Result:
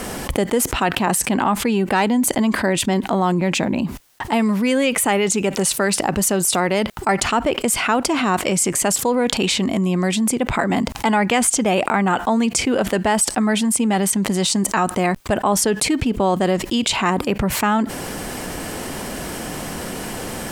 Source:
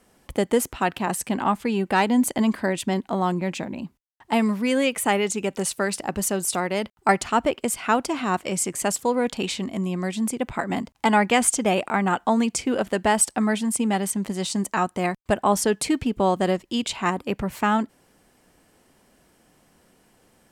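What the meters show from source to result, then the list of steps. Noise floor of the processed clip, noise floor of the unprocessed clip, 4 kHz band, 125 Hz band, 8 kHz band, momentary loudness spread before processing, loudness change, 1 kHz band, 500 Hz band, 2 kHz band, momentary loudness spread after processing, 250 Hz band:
−32 dBFS, −62 dBFS, +8.0 dB, +6.5 dB, +6.5 dB, 7 LU, +4.5 dB, +3.5 dB, +4.0 dB, +5.0 dB, 11 LU, +5.0 dB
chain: envelope flattener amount 70%
level −1 dB

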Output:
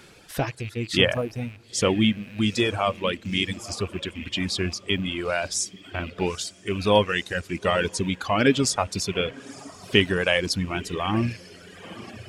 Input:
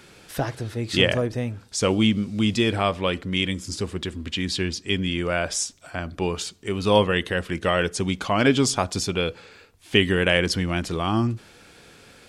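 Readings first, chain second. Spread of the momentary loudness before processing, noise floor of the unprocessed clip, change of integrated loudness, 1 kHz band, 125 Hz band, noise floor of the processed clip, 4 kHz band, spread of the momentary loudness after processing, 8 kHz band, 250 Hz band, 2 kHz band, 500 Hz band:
10 LU, −51 dBFS, −1.0 dB, −0.5 dB, −2.5 dB, −50 dBFS, −0.5 dB, 13 LU, −0.5 dB, −2.0 dB, −1.0 dB, −1.0 dB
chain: loose part that buzzes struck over −34 dBFS, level −24 dBFS
feedback delay with all-pass diffusion 904 ms, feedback 53%, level −14 dB
reverb reduction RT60 1.9 s

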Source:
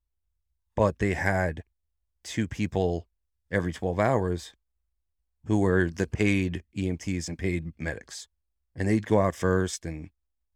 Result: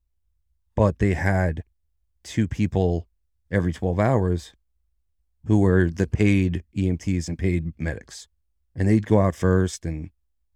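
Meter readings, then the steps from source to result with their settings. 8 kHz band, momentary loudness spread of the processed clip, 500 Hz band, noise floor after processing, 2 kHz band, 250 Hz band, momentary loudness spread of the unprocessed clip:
0.0 dB, 13 LU, +2.5 dB, −71 dBFS, +0.5 dB, +5.5 dB, 15 LU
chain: low-shelf EQ 320 Hz +8.5 dB

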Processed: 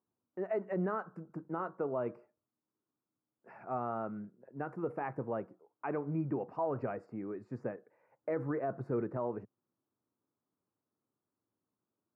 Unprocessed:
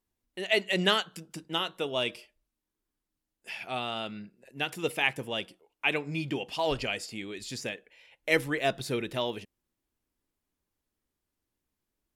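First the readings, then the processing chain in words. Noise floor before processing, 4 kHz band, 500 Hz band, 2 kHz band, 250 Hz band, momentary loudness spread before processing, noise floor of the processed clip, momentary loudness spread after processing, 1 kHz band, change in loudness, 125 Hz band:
below −85 dBFS, below −40 dB, −4.0 dB, −18.5 dB, −2.5 dB, 15 LU, below −85 dBFS, 11 LU, −4.5 dB, −7.5 dB, −2.0 dB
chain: elliptic band-pass filter 110–1,300 Hz, stop band 40 dB
brickwall limiter −25.5 dBFS, peak gain reduction 10 dB

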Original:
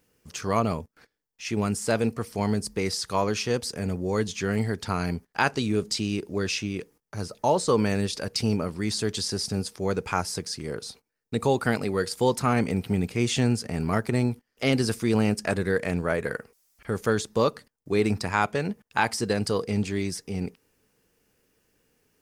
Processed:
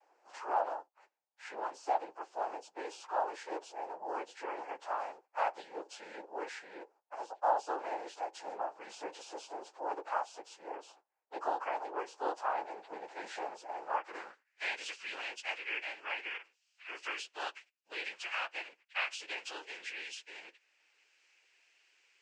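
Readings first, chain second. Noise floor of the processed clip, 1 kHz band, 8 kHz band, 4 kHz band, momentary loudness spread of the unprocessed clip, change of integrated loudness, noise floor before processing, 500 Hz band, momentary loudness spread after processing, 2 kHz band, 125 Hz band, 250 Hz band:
−80 dBFS, −5.0 dB, −19.5 dB, −13.0 dB, 9 LU, −12.5 dB, −80 dBFS, −15.0 dB, 12 LU, −8.5 dB, below −40 dB, −27.5 dB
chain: every partial snapped to a pitch grid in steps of 6 semitones
high-pass filter 520 Hz 24 dB per octave
tilt shelving filter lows +9 dB, about 680 Hz
cochlear-implant simulation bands 8
band-pass filter sweep 820 Hz → 2,700 Hz, 0:13.85–0:14.83
multiband upward and downward compressor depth 40%
level −2.5 dB

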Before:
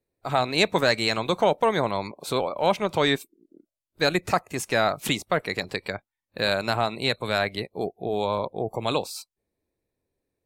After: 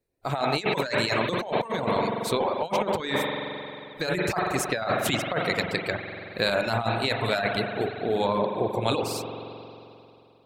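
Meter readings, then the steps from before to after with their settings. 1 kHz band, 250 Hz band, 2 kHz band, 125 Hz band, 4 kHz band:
−1.0 dB, 0.0 dB, −1.0 dB, +1.0 dB, −2.5 dB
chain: spring reverb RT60 2.8 s, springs 44 ms, chirp 70 ms, DRR 1.5 dB
compressor whose output falls as the input rises −23 dBFS, ratio −0.5
reverb reduction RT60 0.67 s

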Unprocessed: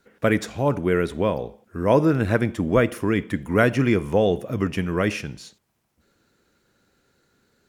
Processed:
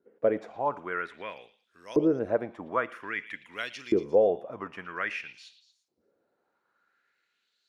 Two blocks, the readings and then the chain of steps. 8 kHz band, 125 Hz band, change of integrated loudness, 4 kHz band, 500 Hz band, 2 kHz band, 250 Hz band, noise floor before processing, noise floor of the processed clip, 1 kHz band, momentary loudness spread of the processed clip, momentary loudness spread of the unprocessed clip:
below −15 dB, −21.5 dB, −7.5 dB, −9.0 dB, −6.0 dB, −7.5 dB, −10.5 dB, −71 dBFS, −78 dBFS, −6.0 dB, 15 LU, 8 LU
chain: auto-filter band-pass saw up 0.51 Hz 360–5,300 Hz
echo through a band-pass that steps 115 ms, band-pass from 3,300 Hz, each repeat 0.7 octaves, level −10 dB

